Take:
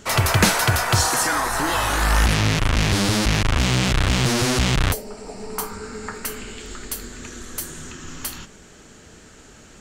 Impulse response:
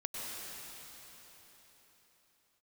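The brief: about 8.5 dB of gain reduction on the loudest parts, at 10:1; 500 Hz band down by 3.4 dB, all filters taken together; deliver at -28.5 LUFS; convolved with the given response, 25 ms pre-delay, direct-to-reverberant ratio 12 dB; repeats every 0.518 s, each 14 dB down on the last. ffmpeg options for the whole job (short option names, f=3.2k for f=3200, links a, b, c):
-filter_complex "[0:a]equalizer=f=500:t=o:g=-4.5,acompressor=threshold=-22dB:ratio=10,aecho=1:1:518|1036:0.2|0.0399,asplit=2[a][b];[1:a]atrim=start_sample=2205,adelay=25[c];[b][c]afir=irnorm=-1:irlink=0,volume=-14.5dB[d];[a][d]amix=inputs=2:normalize=0,volume=-1dB"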